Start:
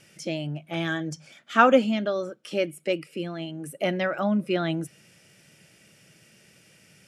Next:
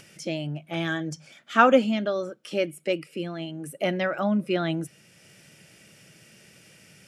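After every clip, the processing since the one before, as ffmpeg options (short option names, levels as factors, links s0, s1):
-af "acompressor=mode=upward:threshold=0.00447:ratio=2.5"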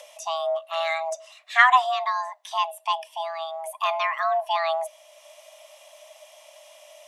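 -af "lowshelf=f=150:t=q:w=1.5:g=10.5,afreqshift=490,volume=1.19"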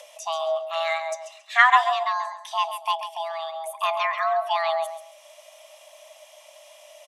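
-af "aecho=1:1:136|272|408:0.316|0.0696|0.0153"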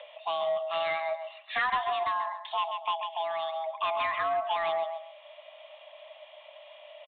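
-af "acompressor=threshold=0.0562:ratio=2.5,aresample=8000,asoftclip=type=tanh:threshold=0.0841,aresample=44100"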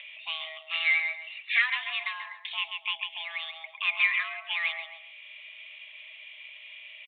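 -af "highpass=f=2300:t=q:w=5.7"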